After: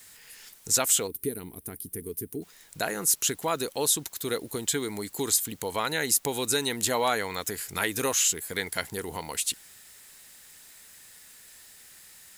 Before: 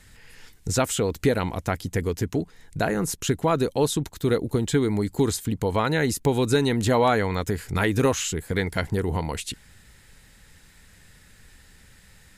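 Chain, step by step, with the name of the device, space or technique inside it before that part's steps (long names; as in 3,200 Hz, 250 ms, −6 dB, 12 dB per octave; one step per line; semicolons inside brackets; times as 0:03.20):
turntable without a phono preamp (RIAA equalisation recording; white noise bed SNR 28 dB)
gain on a spectral selection 0:01.07–0:02.42, 460–8,500 Hz −17 dB
level −4.5 dB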